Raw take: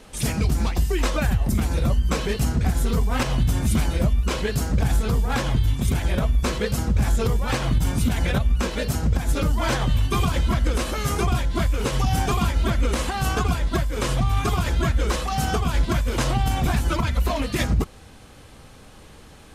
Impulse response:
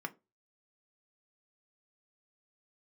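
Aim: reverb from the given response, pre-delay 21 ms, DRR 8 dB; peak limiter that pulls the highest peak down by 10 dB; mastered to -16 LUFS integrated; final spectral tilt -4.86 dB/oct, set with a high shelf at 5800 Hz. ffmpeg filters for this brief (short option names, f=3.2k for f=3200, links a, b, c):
-filter_complex "[0:a]highshelf=f=5.8k:g=7.5,alimiter=limit=-19.5dB:level=0:latency=1,asplit=2[a][b];[1:a]atrim=start_sample=2205,adelay=21[c];[b][c]afir=irnorm=-1:irlink=0,volume=-9dB[d];[a][d]amix=inputs=2:normalize=0,volume=12.5dB"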